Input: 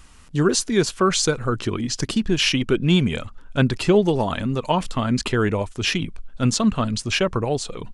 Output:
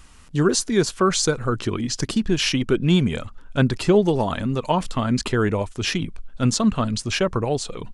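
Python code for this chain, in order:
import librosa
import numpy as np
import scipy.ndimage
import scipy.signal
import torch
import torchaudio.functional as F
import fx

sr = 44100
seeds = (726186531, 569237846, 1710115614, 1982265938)

y = fx.dynamic_eq(x, sr, hz=2700.0, q=1.7, threshold_db=-35.0, ratio=4.0, max_db=-4)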